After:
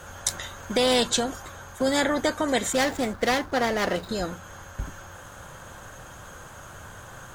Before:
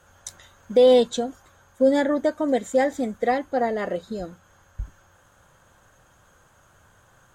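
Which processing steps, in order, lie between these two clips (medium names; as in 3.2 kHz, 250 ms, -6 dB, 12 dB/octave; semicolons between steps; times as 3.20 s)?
2.73–4.09 s: median filter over 15 samples; spectrum-flattening compressor 2:1; trim -2 dB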